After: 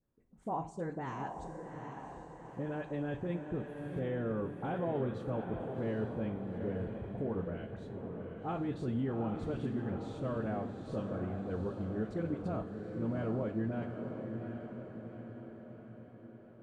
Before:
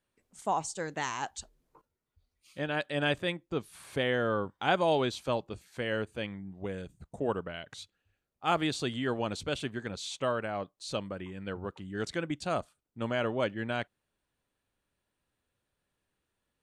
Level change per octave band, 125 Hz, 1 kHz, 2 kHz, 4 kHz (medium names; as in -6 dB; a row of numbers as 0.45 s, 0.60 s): +2.0 dB, -8.0 dB, -13.5 dB, -22.0 dB